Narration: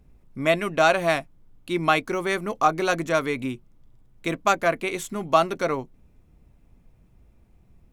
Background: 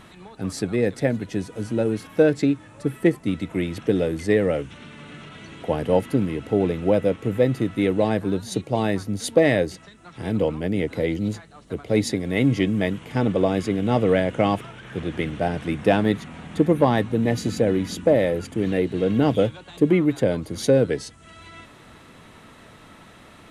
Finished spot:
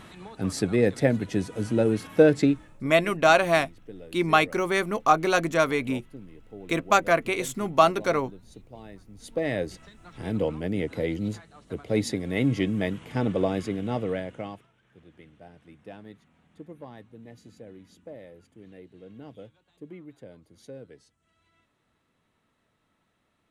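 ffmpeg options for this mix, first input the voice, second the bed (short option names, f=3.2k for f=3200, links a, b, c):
-filter_complex "[0:a]adelay=2450,volume=0.5dB[a];[1:a]volume=18dB,afade=t=out:st=2.42:d=0.39:silence=0.0749894,afade=t=in:st=9.15:d=0.68:silence=0.125893,afade=t=out:st=13.43:d=1.25:silence=0.0891251[b];[a][b]amix=inputs=2:normalize=0"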